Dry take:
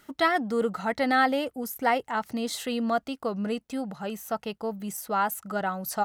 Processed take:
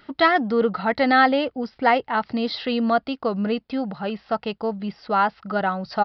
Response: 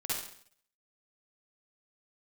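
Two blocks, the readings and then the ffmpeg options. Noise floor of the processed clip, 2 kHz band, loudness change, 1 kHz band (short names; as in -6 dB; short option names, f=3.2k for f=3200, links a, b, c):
-63 dBFS, +6.0 dB, +6.0 dB, +6.0 dB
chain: -af "aresample=11025,aresample=44100,volume=6dB"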